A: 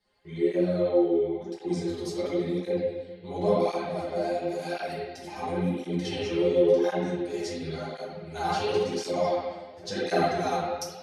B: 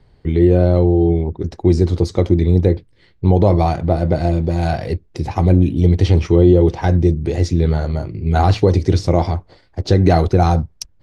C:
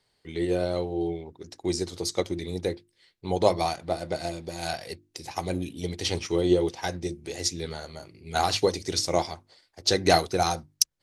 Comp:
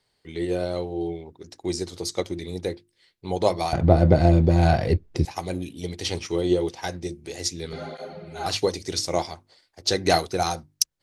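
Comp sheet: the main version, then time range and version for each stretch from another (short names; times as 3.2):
C
3.73–5.25 from B
7.73–8.46 from A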